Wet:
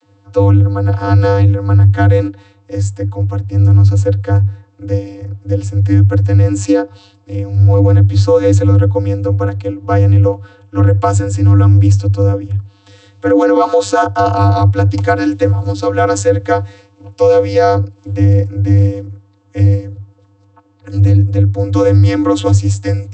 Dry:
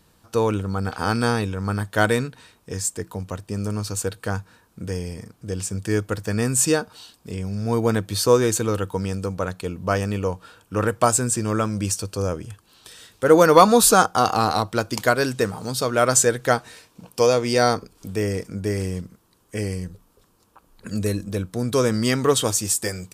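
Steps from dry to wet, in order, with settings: vocoder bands 32, square 99.6 Hz; loudness maximiser +15.5 dB; trim -1 dB

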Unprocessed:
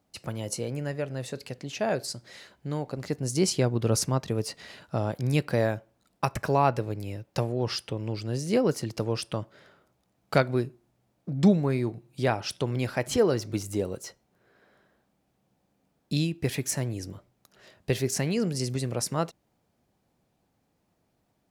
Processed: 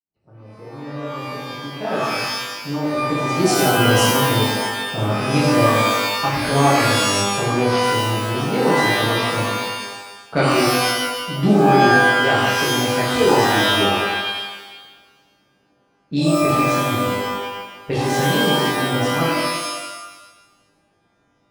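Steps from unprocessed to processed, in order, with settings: fade-in on the opening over 2.19 s; level-controlled noise filter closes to 840 Hz, open at -20 dBFS; pitch-shifted reverb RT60 1.1 s, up +12 st, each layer -2 dB, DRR -7.5 dB; trim -1.5 dB

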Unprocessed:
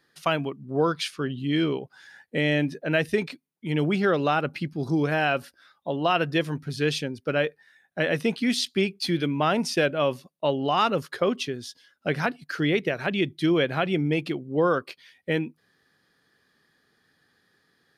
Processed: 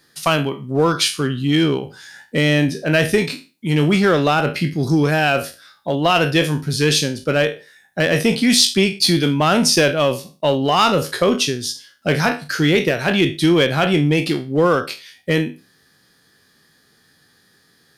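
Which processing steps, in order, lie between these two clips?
spectral sustain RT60 0.31 s; in parallel at -4.5 dB: one-sided clip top -20.5 dBFS; on the sum: tone controls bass +4 dB, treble +10 dB; trim +2.5 dB

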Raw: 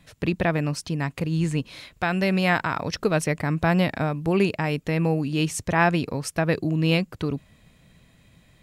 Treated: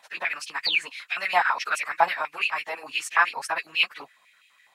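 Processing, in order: painted sound fall, 1.19–1.42 s, 2.2–4.9 kHz -21 dBFS; plain phase-vocoder stretch 0.55×; step-sequenced high-pass 12 Hz 860–2600 Hz; trim +1 dB

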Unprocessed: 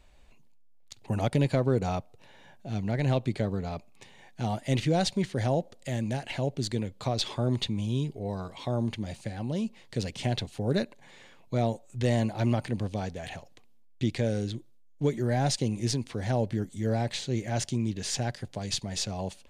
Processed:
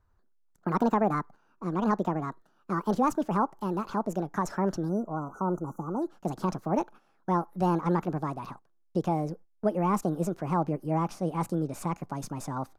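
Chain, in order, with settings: gliding tape speed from 166% -> 139%; gate -45 dBFS, range -12 dB; resonant high shelf 2.2 kHz -12 dB, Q 1.5; spectral selection erased 4.89–6.02 s, 1.5–5.8 kHz

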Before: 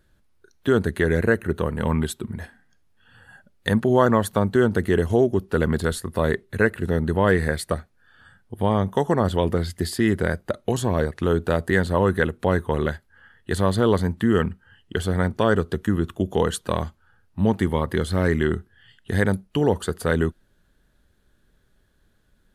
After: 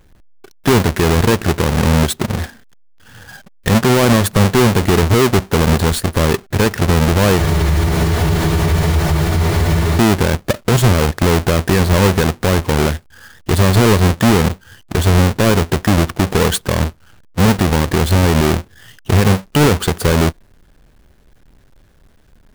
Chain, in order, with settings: square wave that keeps the level; spectral freeze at 7.41 s, 2.57 s; loudness maximiser +14 dB; trim -5.5 dB

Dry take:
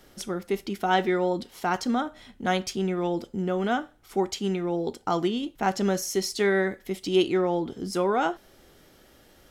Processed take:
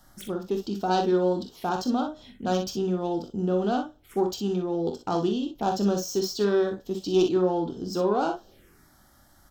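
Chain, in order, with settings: self-modulated delay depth 0.11 ms; touch-sensitive phaser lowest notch 390 Hz, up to 2.1 kHz, full sweep at -30.5 dBFS; early reflections 24 ms -10.5 dB, 44 ms -9.5 dB, 60 ms -8.5 dB

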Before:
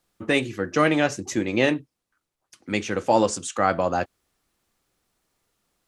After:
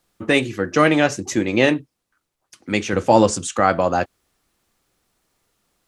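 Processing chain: 2.93–3.60 s: bass shelf 170 Hz +8.5 dB; trim +4.5 dB

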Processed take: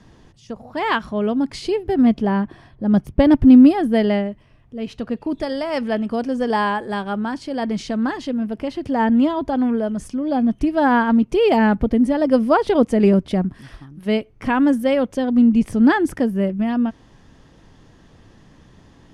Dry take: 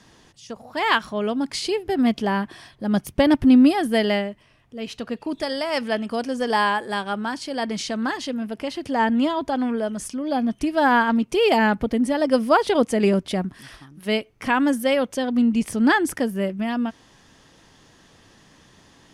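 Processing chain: tilt EQ -2.5 dB/octave; 2.05–4.26 s: tape noise reduction on one side only decoder only

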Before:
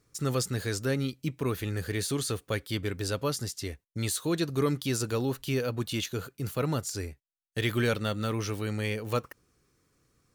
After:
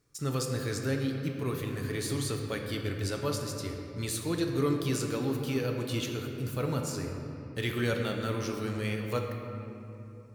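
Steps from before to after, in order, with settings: simulated room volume 150 m³, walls hard, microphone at 0.34 m; trim -4 dB

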